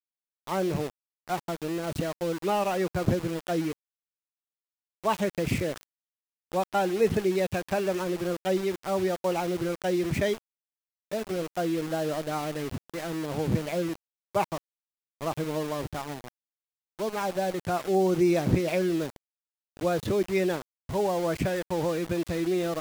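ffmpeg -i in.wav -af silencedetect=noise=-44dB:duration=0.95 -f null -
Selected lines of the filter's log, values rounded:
silence_start: 3.73
silence_end: 5.04 | silence_duration: 1.31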